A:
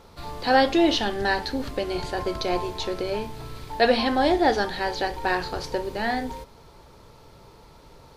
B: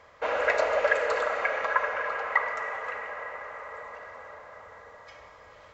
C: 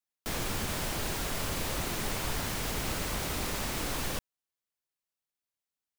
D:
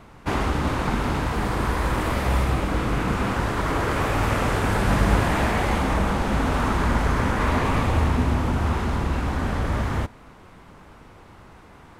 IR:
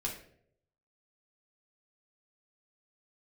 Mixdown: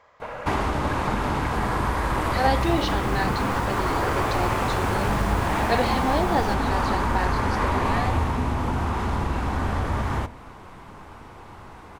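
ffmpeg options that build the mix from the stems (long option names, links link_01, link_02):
-filter_complex "[0:a]adelay=1900,volume=-6dB[link_01];[1:a]acompressor=threshold=-30dB:ratio=6,volume=-4dB[link_02];[2:a]adelay=2350,volume=-10dB,asplit=2[link_03][link_04];[link_04]volume=-10.5dB[link_05];[3:a]acompressor=threshold=-28dB:ratio=2,adelay=200,volume=1dB,asplit=2[link_06][link_07];[link_07]volume=-12.5dB[link_08];[4:a]atrim=start_sample=2205[link_09];[link_08][link_09]afir=irnorm=-1:irlink=0[link_10];[link_05]aecho=0:1:712:1[link_11];[link_01][link_02][link_03][link_06][link_10][link_11]amix=inputs=6:normalize=0,equalizer=frequency=930:width_type=o:width=0.7:gain=5"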